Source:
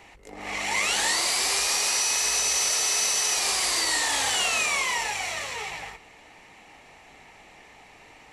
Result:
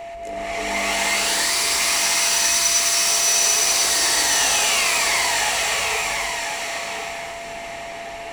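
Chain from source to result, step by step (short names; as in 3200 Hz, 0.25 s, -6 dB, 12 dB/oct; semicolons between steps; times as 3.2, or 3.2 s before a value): spectral delete 1.11–2.77, 400–880 Hz; in parallel at +2 dB: compressor, threshold -43 dBFS, peak gain reduction 19.5 dB; on the sum: soft clip -22.5 dBFS, distortion -13 dB; whine 680 Hz -32 dBFS; thinning echo 1.045 s, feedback 21%, high-pass 400 Hz, level -3.5 dB; non-linear reverb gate 0.4 s rising, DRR -5 dB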